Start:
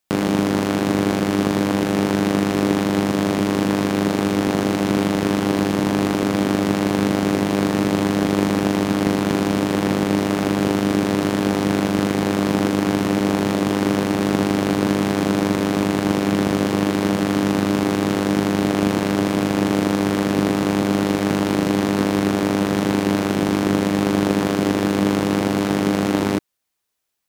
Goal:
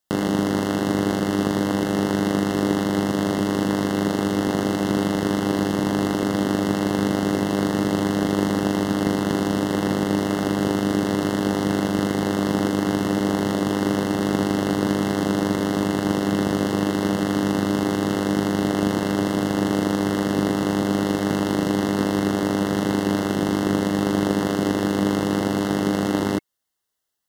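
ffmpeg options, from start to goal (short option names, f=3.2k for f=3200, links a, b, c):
-af "asuperstop=centerf=2400:order=20:qfactor=5.2,volume=-2.5dB"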